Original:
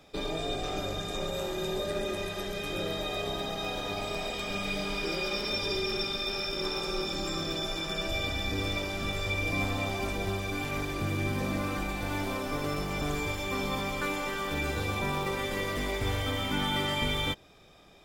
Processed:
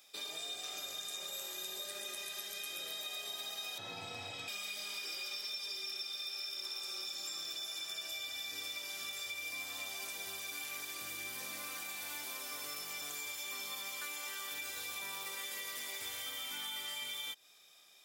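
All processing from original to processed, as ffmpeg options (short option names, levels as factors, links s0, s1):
-filter_complex "[0:a]asettb=1/sr,asplit=3[s0][s1][s2];[s0]atrim=end=3.784[s3];[s1]atrim=start=3.78:end=4.48,asetpts=PTS-STARTPTS,afade=t=in:d=0.004:c=qsin,afade=t=out:st=0.696:d=0.004:c=qsin,aemphasis=mode=reproduction:type=riaa,afreqshift=76[s4];[s2]atrim=start=4.476[s5];[s3][s4]acrossfade=d=0.004:c1=hsin:c2=qsin[s6];[s6][s5]acrossfade=d=0.004:c1=qsin:c2=hsin,aderivative,acompressor=threshold=0.00631:ratio=6,volume=1.78"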